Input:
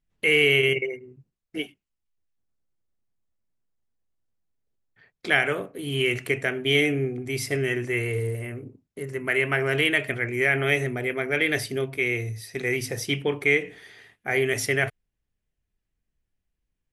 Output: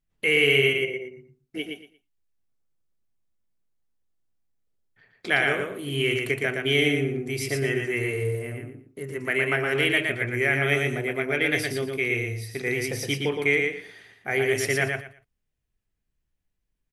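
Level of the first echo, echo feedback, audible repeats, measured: −4.0 dB, 21%, 3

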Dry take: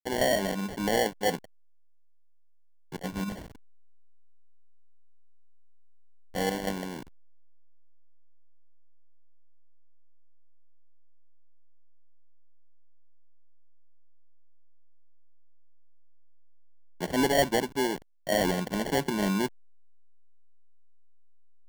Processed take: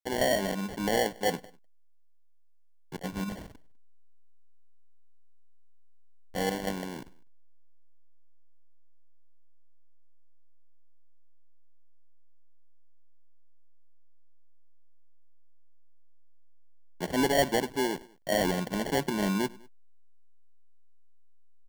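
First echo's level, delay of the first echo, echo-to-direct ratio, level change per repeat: −23.0 dB, 100 ms, −21.5 dB, −4.5 dB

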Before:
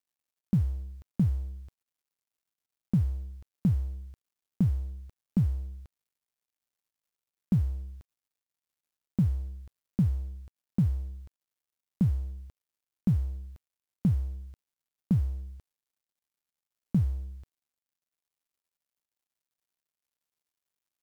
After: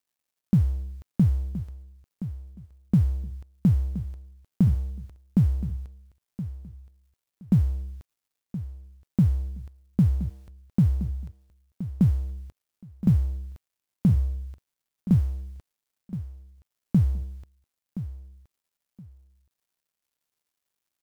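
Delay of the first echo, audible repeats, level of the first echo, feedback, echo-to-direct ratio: 1,021 ms, 2, −13.0 dB, 21%, −13.0 dB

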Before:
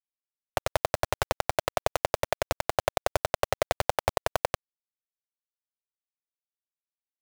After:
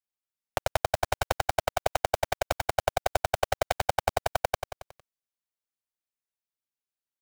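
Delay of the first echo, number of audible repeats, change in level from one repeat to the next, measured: 91 ms, 5, −5.0 dB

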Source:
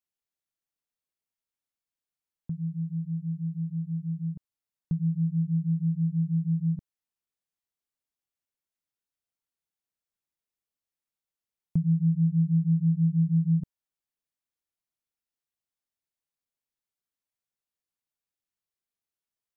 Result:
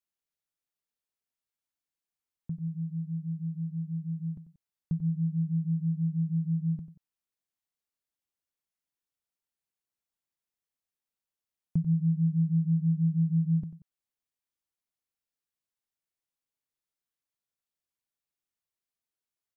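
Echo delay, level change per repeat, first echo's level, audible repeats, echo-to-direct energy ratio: 92 ms, −7.5 dB, −13.0 dB, 2, −12.5 dB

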